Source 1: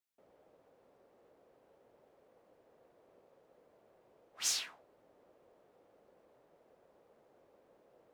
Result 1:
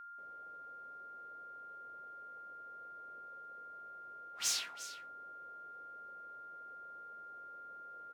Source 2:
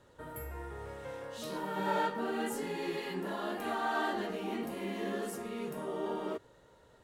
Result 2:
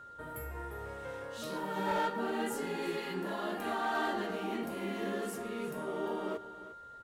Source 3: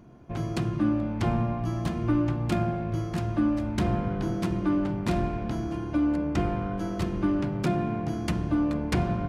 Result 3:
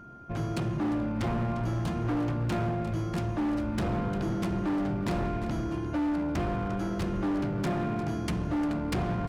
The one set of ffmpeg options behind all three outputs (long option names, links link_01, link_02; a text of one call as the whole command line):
ffmpeg -i in.wav -af "aecho=1:1:351:0.188,aeval=exprs='val(0)+0.00398*sin(2*PI*1400*n/s)':channel_layout=same,asoftclip=type=hard:threshold=-26dB" out.wav